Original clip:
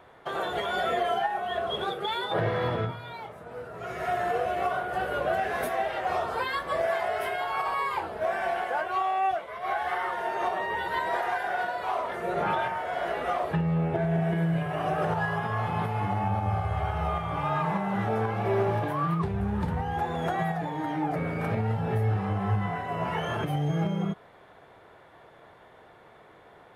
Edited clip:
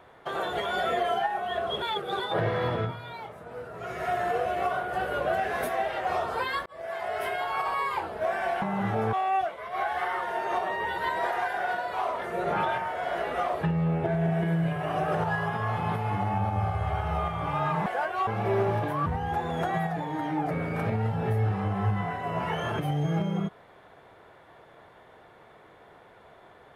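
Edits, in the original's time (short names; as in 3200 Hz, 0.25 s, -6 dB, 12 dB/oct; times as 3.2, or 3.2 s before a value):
1.82–2.2 reverse
6.66–7.26 fade in
8.62–9.03 swap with 17.76–18.27
19.06–19.71 cut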